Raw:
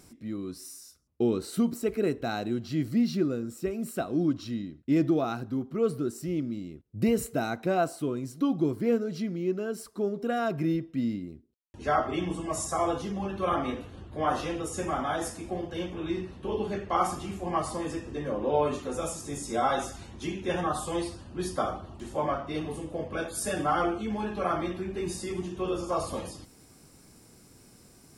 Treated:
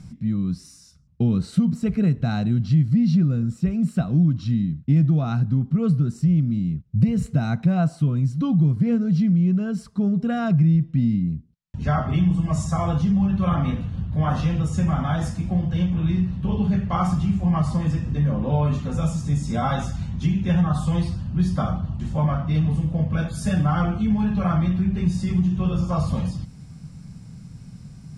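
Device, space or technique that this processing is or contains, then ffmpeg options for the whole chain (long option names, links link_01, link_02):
jukebox: -af "lowpass=6400,lowshelf=frequency=240:width_type=q:width=3:gain=13,acompressor=threshold=-19dB:ratio=3,volume=2.5dB"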